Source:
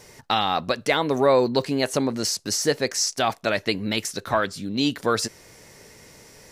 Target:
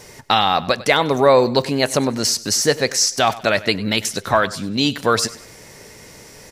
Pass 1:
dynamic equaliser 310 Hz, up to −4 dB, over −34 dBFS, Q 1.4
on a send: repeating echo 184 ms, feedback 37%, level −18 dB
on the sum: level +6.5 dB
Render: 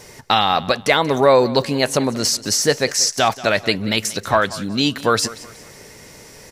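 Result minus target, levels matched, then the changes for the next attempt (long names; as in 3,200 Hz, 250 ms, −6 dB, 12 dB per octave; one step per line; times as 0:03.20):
echo 86 ms late
change: repeating echo 98 ms, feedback 37%, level −18 dB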